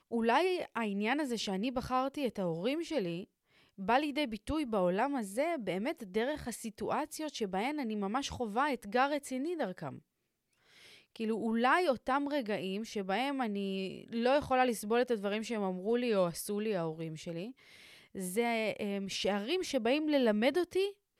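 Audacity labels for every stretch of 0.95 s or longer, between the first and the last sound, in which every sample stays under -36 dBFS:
9.880000	11.160000	silence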